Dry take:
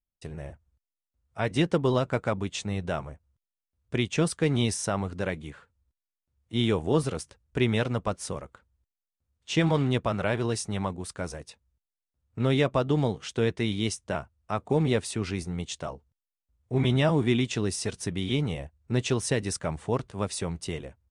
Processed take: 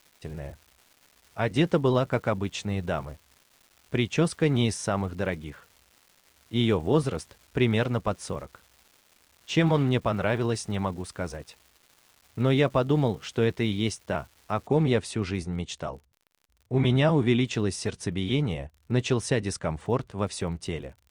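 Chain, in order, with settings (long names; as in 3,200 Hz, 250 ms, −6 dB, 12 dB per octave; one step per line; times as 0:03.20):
high-shelf EQ 6,700 Hz −8 dB
surface crackle 590 per second −47 dBFS, from 0:14.67 53 per second
level +1.5 dB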